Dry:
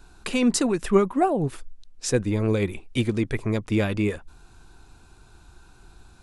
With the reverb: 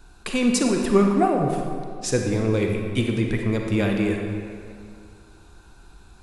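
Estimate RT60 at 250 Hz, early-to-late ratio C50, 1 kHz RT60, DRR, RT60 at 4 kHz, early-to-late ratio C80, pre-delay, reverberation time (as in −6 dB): 2.3 s, 3.0 dB, 2.4 s, 2.0 dB, 1.5 s, 4.5 dB, 33 ms, 2.4 s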